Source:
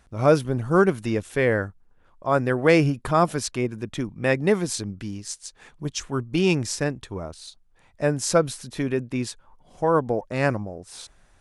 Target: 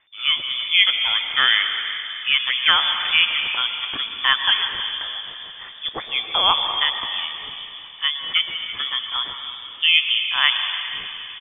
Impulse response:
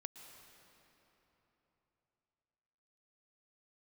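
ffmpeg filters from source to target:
-filter_complex "[0:a]tiltshelf=f=930:g=-5.5,bandreject=f=101.8:t=h:w=4,bandreject=f=203.6:t=h:w=4,bandreject=f=305.4:t=h:w=4,bandreject=f=407.2:t=h:w=4,bandreject=f=509:t=h:w=4,bandreject=f=610.8:t=h:w=4,bandreject=f=712.6:t=h:w=4,bandreject=f=814.4:t=h:w=4,bandreject=f=916.2:t=h:w=4,bandreject=f=1018:t=h:w=4,bandreject=f=1119.8:t=h:w=4,bandreject=f=1221.6:t=h:w=4,bandreject=f=1323.4:t=h:w=4,dynaudnorm=f=250:g=5:m=3.76,aecho=1:1:324:0.126[s0];[1:a]atrim=start_sample=2205[s1];[s0][s1]afir=irnorm=-1:irlink=0,lowpass=f=3100:t=q:w=0.5098,lowpass=f=3100:t=q:w=0.6013,lowpass=f=3100:t=q:w=0.9,lowpass=f=3100:t=q:w=2.563,afreqshift=-3600,volume=1.5"

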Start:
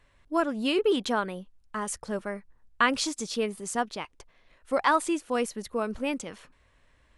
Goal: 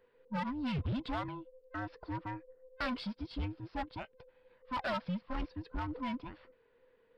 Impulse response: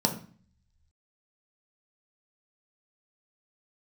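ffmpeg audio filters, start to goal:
-af "afftfilt=real='real(if(between(b,1,1008),(2*floor((b-1)/24)+1)*24-b,b),0)':imag='imag(if(between(b,1,1008),(2*floor((b-1)/24)+1)*24-b,b),0)*if(between(b,1,1008),-1,1)':win_size=2048:overlap=0.75,lowpass=f=1600:p=1,aresample=11025,asoftclip=type=hard:threshold=0.0473,aresample=44100,aeval=exprs='0.0668*(cos(1*acos(clip(val(0)/0.0668,-1,1)))-cos(1*PI/2))+0.0015*(cos(6*acos(clip(val(0)/0.0668,-1,1)))-cos(6*PI/2))':c=same,volume=0.531"

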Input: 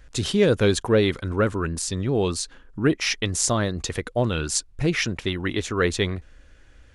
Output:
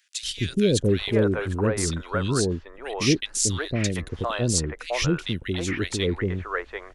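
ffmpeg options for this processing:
-filter_complex "[0:a]acrossover=split=530|2000[s0][s1][s2];[s0]adelay=230[s3];[s1]adelay=740[s4];[s3][s4][s2]amix=inputs=3:normalize=0"

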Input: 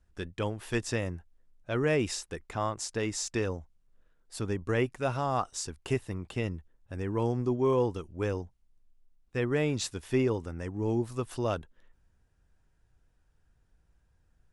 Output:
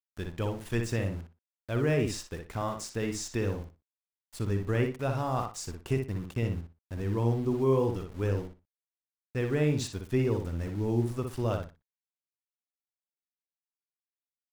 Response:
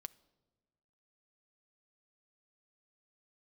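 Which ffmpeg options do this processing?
-filter_complex "[0:a]lowshelf=f=220:g=8,aeval=exprs='val(0)*gte(abs(val(0)),0.00891)':c=same,asplit=2[s0][s1];[s1]adelay=60,lowpass=f=3900:p=1,volume=0.562,asplit=2[s2][s3];[s3]adelay=60,lowpass=f=3900:p=1,volume=0.22,asplit=2[s4][s5];[s5]adelay=60,lowpass=f=3900:p=1,volume=0.22[s6];[s2][s4][s6]amix=inputs=3:normalize=0[s7];[s0][s7]amix=inputs=2:normalize=0,volume=0.668"

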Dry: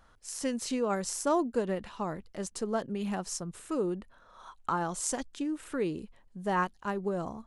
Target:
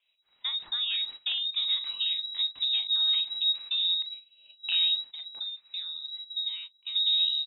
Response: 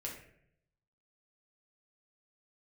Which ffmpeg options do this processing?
-filter_complex "[0:a]asettb=1/sr,asplit=3[s0][s1][s2];[s0]atrim=end=4.954[s3];[s1]atrim=start=4.95:end=6.95,asetpts=PTS-STARTPTS,afade=t=in:d=0.004:c=qsin,afade=t=out:st=1.996:d=0.004:c=qsin,acompressor=threshold=0.00794:ratio=8[s4];[s2]atrim=start=6.946[s5];[s3][s4]acrossfade=d=0.004:c1=hsin:c2=qsin[s6];[s6][s5]acrossfade=d=0.004:c1=qsin:c2=hsin,asplit=2[s7][s8];[s8]adelay=41,volume=0.266[s9];[s7][s9]amix=inputs=2:normalize=0,afreqshift=-47,asubboost=boost=9:cutoff=170,aeval=exprs='clip(val(0),-1,0.0944)':c=same,acrossover=split=130[s10][s11];[s11]acompressor=threshold=0.0447:ratio=4[s12];[s10][s12]amix=inputs=2:normalize=0,lowpass=f=3300:t=q:w=0.5098,lowpass=f=3300:t=q:w=0.6013,lowpass=f=3300:t=q:w=0.9,lowpass=f=3300:t=q:w=2.563,afreqshift=-3900,agate=range=0.2:threshold=0.00891:ratio=16:detection=peak"

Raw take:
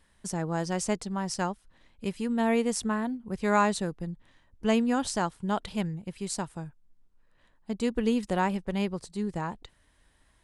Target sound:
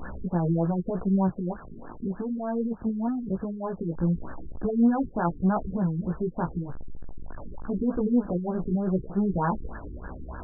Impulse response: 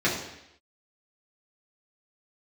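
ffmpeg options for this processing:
-filter_complex "[0:a]aeval=exprs='val(0)+0.5*0.0188*sgn(val(0))':c=same,equalizer=f=120:w=6.3:g=-5,acontrast=53,alimiter=limit=0.15:level=0:latency=1:release=24,asettb=1/sr,asplit=3[s0][s1][s2];[s0]atrim=end=1.284[s3];[s1]atrim=start=1.28:end=3.97,asetpts=PTS-STARTPTS,afade=t=in:d=0.004:c=qsin,afade=t=out:st=2.686:d=0.004:c=qsin,acrossover=split=93|930[s4][s5][s6];[s4]acompressor=threshold=0.00501:ratio=4[s7];[s5]acompressor=threshold=0.0447:ratio=4[s8];[s6]acompressor=threshold=0.0355:ratio=4[s9];[s7][s8][s9]amix=inputs=3:normalize=0[s10];[s2]atrim=start=3.966[s11];[s3][s10]acrossfade=d=0.004:c1=hsin:c2=qsin[s12];[s12][s11]acrossfade=d=0.004:c1=qsin:c2=hsin,flanger=delay=15.5:depth=2.4:speed=0.88,afftfilt=real='re*lt(b*sr/1024,420*pow(1800/420,0.5+0.5*sin(2*PI*3.3*pts/sr)))':imag='im*lt(b*sr/1024,420*pow(1800/420,0.5+0.5*sin(2*PI*3.3*pts/sr)))':win_size=1024:overlap=0.75,volume=1.41"

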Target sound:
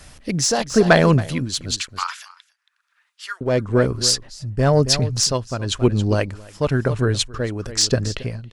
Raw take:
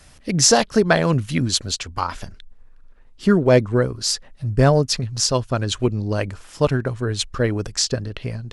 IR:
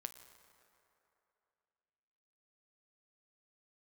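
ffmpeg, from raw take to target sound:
-filter_complex "[0:a]asettb=1/sr,asplit=3[s0][s1][s2];[s0]atrim=end=1.774[s3];[s1]atrim=start=1.77:end=3.41,asetpts=PTS-STARTPTS,afade=t=in:d=0.004:c=qsin,afade=t=out:st=1.636:d=0.004:c=qsin,highpass=f=1300:w=0.5412,highpass=f=1300:w=1.3066[s4];[s2]atrim=start=3.406[s5];[s3][s4]acrossfade=d=0.004:c1=hsin:c2=qsin[s6];[s6][s5]acrossfade=d=0.004:c1=qsin:c2=hsin,asoftclip=type=tanh:threshold=0.562,aecho=1:1:275:0.158,tremolo=f=1:d=0.67,volume=1.78"

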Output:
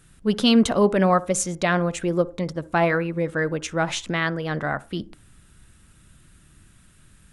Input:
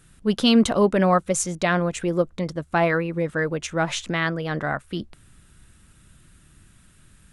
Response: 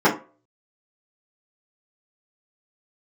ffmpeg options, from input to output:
-filter_complex "[0:a]asplit=2[s0][s1];[1:a]atrim=start_sample=2205,adelay=50[s2];[s1][s2]afir=irnorm=-1:irlink=0,volume=0.00794[s3];[s0][s3]amix=inputs=2:normalize=0"

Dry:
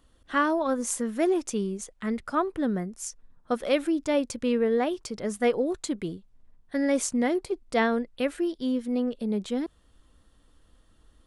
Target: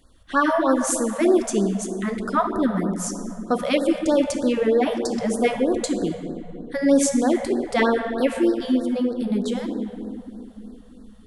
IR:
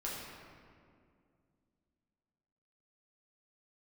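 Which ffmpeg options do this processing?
-filter_complex "[0:a]acontrast=48,asplit=2[s0][s1];[1:a]atrim=start_sample=2205,asetrate=30429,aresample=44100[s2];[s1][s2]afir=irnorm=-1:irlink=0,volume=0.531[s3];[s0][s3]amix=inputs=2:normalize=0,afftfilt=real='re*(1-between(b*sr/1024,280*pow(2700/280,0.5+0.5*sin(2*PI*3.2*pts/sr))/1.41,280*pow(2700/280,0.5+0.5*sin(2*PI*3.2*pts/sr))*1.41))':imag='im*(1-between(b*sr/1024,280*pow(2700/280,0.5+0.5*sin(2*PI*3.2*pts/sr))/1.41,280*pow(2700/280,0.5+0.5*sin(2*PI*3.2*pts/sr))*1.41))':win_size=1024:overlap=0.75,volume=0.708"

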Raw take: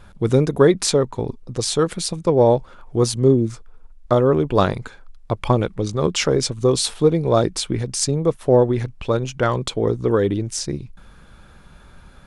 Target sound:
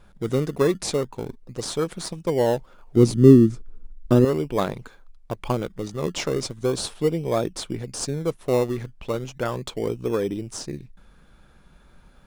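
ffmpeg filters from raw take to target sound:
-filter_complex "[0:a]equalizer=f=91:w=2.7:g=-10,asplit=2[s0][s1];[s1]acrusher=samples=22:mix=1:aa=0.000001:lfo=1:lforange=13.2:lforate=0.37,volume=0.355[s2];[s0][s2]amix=inputs=2:normalize=0,asettb=1/sr,asplit=3[s3][s4][s5];[s3]atrim=end=2.964[s6];[s4]atrim=start=2.96:end=4.25,asetpts=PTS-STARTPTS,afade=t=in:d=0.004:c=qsin,afade=t=out:st=1.286:d=0.004:c=qsin,lowshelf=f=440:t=q:w=1.5:g=10.5[s7];[s5]atrim=start=4.246[s8];[s6][s7]acrossfade=d=0.004:c1=hsin:c2=qsin[s9];[s9][s8]acrossfade=d=0.004:c1=qsin:c2=hsin,volume=0.376"

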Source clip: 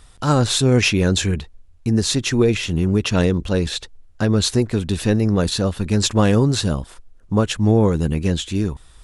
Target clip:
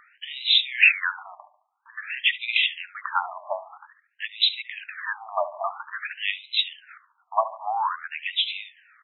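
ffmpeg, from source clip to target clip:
-filter_complex "[0:a]asplit=2[s0][s1];[s1]adelay=72,lowpass=f=2500:p=1,volume=0.224,asplit=2[s2][s3];[s3]adelay=72,lowpass=f=2500:p=1,volume=0.48,asplit=2[s4][s5];[s5]adelay=72,lowpass=f=2500:p=1,volume=0.48,asplit=2[s6][s7];[s7]adelay=72,lowpass=f=2500:p=1,volume=0.48,asplit=2[s8][s9];[s9]adelay=72,lowpass=f=2500:p=1,volume=0.48[s10];[s0][s2][s4][s6][s8][s10]amix=inputs=6:normalize=0,afftfilt=real='re*between(b*sr/1024,830*pow(2900/830,0.5+0.5*sin(2*PI*0.5*pts/sr))/1.41,830*pow(2900/830,0.5+0.5*sin(2*PI*0.5*pts/sr))*1.41)':imag='im*between(b*sr/1024,830*pow(2900/830,0.5+0.5*sin(2*PI*0.5*pts/sr))/1.41,830*pow(2900/830,0.5+0.5*sin(2*PI*0.5*pts/sr))*1.41)':win_size=1024:overlap=0.75,volume=2.11"

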